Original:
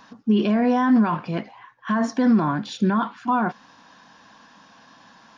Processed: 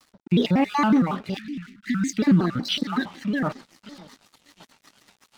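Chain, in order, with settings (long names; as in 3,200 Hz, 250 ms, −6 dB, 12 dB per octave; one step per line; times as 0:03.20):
time-frequency cells dropped at random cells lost 26%
delay with a band-pass on its return 578 ms, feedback 34%, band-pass 400 Hz, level −17 dB
on a send at −22 dB: convolution reverb, pre-delay 3 ms
on the sum: rotating-speaker cabinet horn 1 Hz, later 8 Hz, at 0:01.67
parametric band 3,800 Hz +10.5 dB 1.3 octaves
in parallel at −3 dB: downward compressor, threshold −32 dBFS, peak gain reduction 16.5 dB
on the sum: dead-zone distortion −45 dBFS
0:01.37–0:02.18: elliptic band-stop filter 270–1,600 Hz, stop band 40 dB
pitch modulation by a square or saw wave square 5.4 Hz, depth 250 cents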